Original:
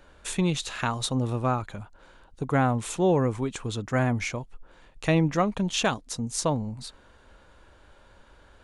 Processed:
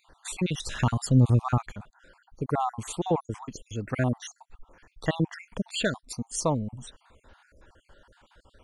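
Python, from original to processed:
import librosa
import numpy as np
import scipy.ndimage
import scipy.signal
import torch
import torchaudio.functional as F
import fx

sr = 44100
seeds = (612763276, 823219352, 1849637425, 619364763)

y = fx.spec_dropout(x, sr, seeds[0], share_pct=54)
y = fx.bass_treble(y, sr, bass_db=11, treble_db=3, at=(0.66, 1.73))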